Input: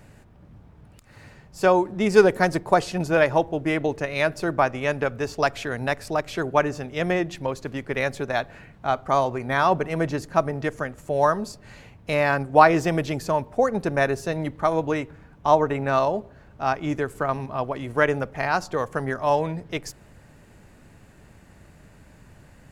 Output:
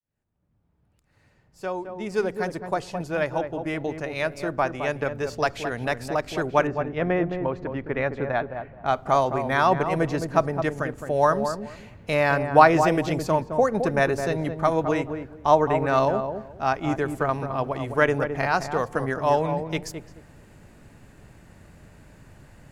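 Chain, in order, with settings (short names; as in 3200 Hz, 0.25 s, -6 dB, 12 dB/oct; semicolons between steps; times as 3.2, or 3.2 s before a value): opening faded in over 6.93 s; 6.67–8.86 LPF 2000 Hz 12 dB/oct; darkening echo 0.214 s, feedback 22%, low-pass 930 Hz, level -6 dB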